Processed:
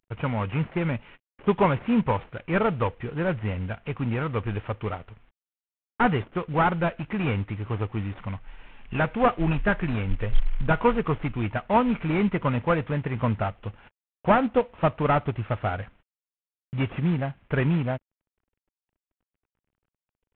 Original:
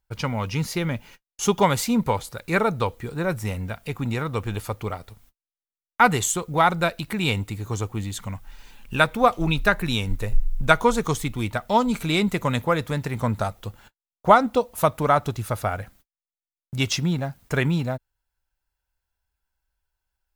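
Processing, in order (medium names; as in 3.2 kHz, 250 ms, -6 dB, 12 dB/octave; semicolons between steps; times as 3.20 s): CVSD coder 16 kbps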